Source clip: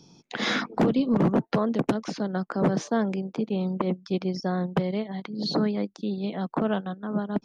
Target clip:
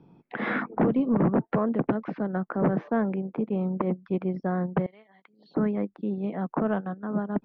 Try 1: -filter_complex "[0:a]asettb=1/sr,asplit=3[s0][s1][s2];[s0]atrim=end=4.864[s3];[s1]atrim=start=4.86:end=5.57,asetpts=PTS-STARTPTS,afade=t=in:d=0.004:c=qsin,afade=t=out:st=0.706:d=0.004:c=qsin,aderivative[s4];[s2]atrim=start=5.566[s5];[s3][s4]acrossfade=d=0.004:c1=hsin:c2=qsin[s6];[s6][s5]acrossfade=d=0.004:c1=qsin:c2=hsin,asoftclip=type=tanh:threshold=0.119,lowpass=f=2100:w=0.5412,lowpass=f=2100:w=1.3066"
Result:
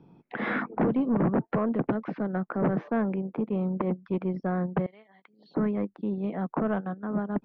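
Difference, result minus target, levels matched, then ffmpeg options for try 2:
saturation: distortion +10 dB
-filter_complex "[0:a]asettb=1/sr,asplit=3[s0][s1][s2];[s0]atrim=end=4.864[s3];[s1]atrim=start=4.86:end=5.57,asetpts=PTS-STARTPTS,afade=t=in:d=0.004:c=qsin,afade=t=out:st=0.706:d=0.004:c=qsin,aderivative[s4];[s2]atrim=start=5.566[s5];[s3][s4]acrossfade=d=0.004:c1=hsin:c2=qsin[s6];[s6][s5]acrossfade=d=0.004:c1=qsin:c2=hsin,asoftclip=type=tanh:threshold=0.251,lowpass=f=2100:w=0.5412,lowpass=f=2100:w=1.3066"

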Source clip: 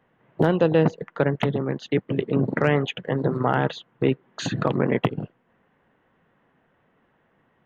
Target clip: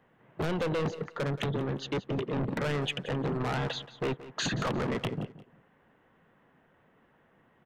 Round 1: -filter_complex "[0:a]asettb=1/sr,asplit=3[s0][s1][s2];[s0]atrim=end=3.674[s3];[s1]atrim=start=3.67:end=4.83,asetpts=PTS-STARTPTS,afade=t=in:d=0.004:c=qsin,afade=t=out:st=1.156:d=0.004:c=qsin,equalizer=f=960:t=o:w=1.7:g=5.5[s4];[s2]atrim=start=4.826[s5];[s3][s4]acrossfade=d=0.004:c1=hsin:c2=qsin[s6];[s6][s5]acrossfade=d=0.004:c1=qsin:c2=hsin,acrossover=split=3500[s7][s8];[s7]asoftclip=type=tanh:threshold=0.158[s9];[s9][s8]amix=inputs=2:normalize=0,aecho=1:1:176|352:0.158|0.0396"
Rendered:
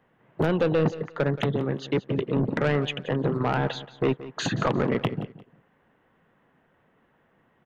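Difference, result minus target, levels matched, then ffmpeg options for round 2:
saturation: distortion -7 dB
-filter_complex "[0:a]asettb=1/sr,asplit=3[s0][s1][s2];[s0]atrim=end=3.674[s3];[s1]atrim=start=3.67:end=4.83,asetpts=PTS-STARTPTS,afade=t=in:d=0.004:c=qsin,afade=t=out:st=1.156:d=0.004:c=qsin,equalizer=f=960:t=o:w=1.7:g=5.5[s4];[s2]atrim=start=4.826[s5];[s3][s4]acrossfade=d=0.004:c1=hsin:c2=qsin[s6];[s6][s5]acrossfade=d=0.004:c1=qsin:c2=hsin,acrossover=split=3500[s7][s8];[s7]asoftclip=type=tanh:threshold=0.0422[s9];[s9][s8]amix=inputs=2:normalize=0,aecho=1:1:176|352:0.158|0.0396"

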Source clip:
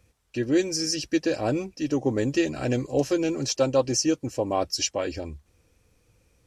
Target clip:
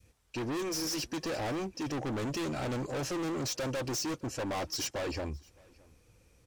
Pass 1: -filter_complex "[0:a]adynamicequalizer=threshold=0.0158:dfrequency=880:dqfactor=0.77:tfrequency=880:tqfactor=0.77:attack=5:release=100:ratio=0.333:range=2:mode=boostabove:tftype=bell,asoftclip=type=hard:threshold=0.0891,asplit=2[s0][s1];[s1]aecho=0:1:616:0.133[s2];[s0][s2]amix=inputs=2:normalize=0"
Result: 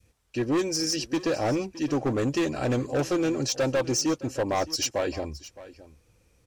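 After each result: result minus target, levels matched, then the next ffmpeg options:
echo-to-direct +9 dB; hard clipper: distortion -6 dB
-filter_complex "[0:a]adynamicequalizer=threshold=0.0158:dfrequency=880:dqfactor=0.77:tfrequency=880:tqfactor=0.77:attack=5:release=100:ratio=0.333:range=2:mode=boostabove:tftype=bell,asoftclip=type=hard:threshold=0.0891,asplit=2[s0][s1];[s1]aecho=0:1:616:0.0473[s2];[s0][s2]amix=inputs=2:normalize=0"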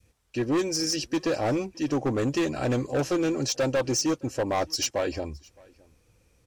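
hard clipper: distortion -6 dB
-filter_complex "[0:a]adynamicequalizer=threshold=0.0158:dfrequency=880:dqfactor=0.77:tfrequency=880:tqfactor=0.77:attack=5:release=100:ratio=0.333:range=2:mode=boostabove:tftype=bell,asoftclip=type=hard:threshold=0.0237,asplit=2[s0][s1];[s1]aecho=0:1:616:0.0473[s2];[s0][s2]amix=inputs=2:normalize=0"

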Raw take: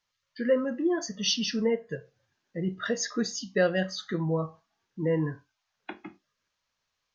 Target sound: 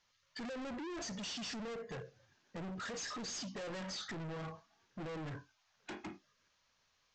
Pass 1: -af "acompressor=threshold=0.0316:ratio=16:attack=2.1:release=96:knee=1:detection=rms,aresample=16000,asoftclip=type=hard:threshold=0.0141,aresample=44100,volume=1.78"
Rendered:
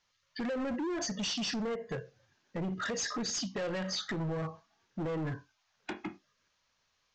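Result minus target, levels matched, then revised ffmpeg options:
hard clipper: distortion -5 dB
-af "acompressor=threshold=0.0316:ratio=16:attack=2.1:release=96:knee=1:detection=rms,aresample=16000,asoftclip=type=hard:threshold=0.00447,aresample=44100,volume=1.78"

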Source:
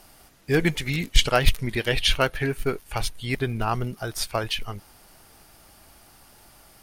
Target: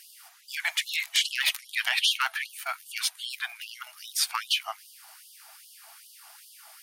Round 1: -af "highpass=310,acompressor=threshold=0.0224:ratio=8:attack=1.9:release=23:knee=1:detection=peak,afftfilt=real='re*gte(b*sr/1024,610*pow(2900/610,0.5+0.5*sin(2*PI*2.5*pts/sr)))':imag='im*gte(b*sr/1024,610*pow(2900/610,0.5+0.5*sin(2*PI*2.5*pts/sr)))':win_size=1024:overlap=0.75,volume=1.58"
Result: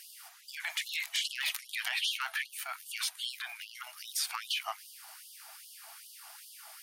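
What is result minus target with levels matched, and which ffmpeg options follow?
compression: peak gain reduction +9 dB
-af "highpass=310,acompressor=threshold=0.075:ratio=8:attack=1.9:release=23:knee=1:detection=peak,afftfilt=real='re*gte(b*sr/1024,610*pow(2900/610,0.5+0.5*sin(2*PI*2.5*pts/sr)))':imag='im*gte(b*sr/1024,610*pow(2900/610,0.5+0.5*sin(2*PI*2.5*pts/sr)))':win_size=1024:overlap=0.75,volume=1.58"

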